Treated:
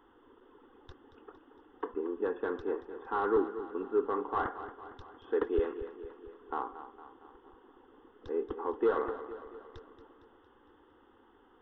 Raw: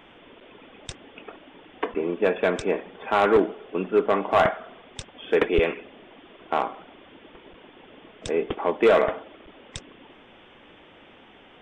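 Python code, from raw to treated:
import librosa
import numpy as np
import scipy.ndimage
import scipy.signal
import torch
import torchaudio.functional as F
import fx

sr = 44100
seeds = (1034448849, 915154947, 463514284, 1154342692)

y = scipy.ndimage.gaussian_filter1d(x, 2.7, mode='constant')
y = fx.fixed_phaser(y, sr, hz=630.0, stages=6)
y = fx.echo_feedback(y, sr, ms=229, feedback_pct=56, wet_db=-12.5)
y = F.gain(torch.from_numpy(y), -7.5).numpy()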